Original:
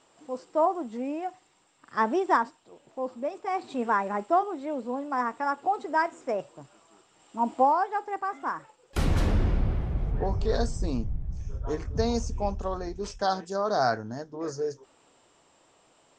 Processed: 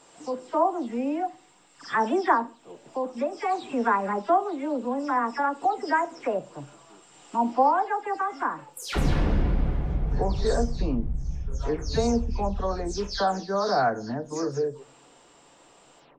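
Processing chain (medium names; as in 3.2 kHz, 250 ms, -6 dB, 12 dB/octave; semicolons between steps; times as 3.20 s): delay that grows with frequency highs early, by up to 192 ms; in parallel at +2 dB: compression, threshold -36 dBFS, peak gain reduction 18 dB; on the sum: simulated room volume 270 m³, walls furnished, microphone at 0.32 m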